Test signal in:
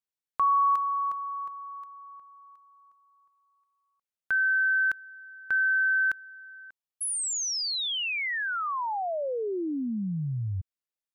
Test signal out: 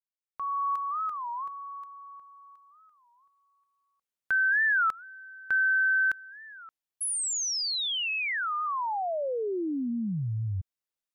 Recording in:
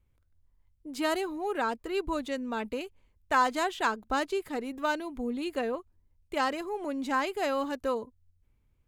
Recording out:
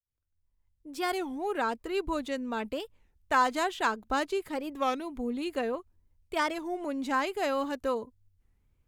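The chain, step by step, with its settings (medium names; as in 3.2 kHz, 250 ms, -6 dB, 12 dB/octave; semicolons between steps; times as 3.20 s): fade-in on the opening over 1.33 s; warped record 33 1/3 rpm, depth 250 cents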